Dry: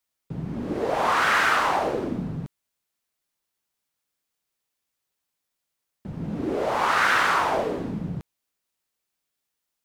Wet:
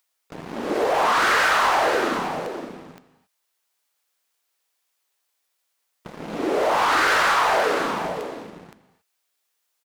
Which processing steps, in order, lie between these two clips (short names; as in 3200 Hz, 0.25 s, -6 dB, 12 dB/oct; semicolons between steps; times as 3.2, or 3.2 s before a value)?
HPF 480 Hz 12 dB/oct; gate with hold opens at -38 dBFS; upward compressor, threshold -43 dBFS; sample leveller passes 3; compressor, threshold -18 dBFS, peak gain reduction 6.5 dB; on a send: echo 0.518 s -8 dB; on the sum: non-linear reverb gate 0.3 s flat, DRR 11.5 dB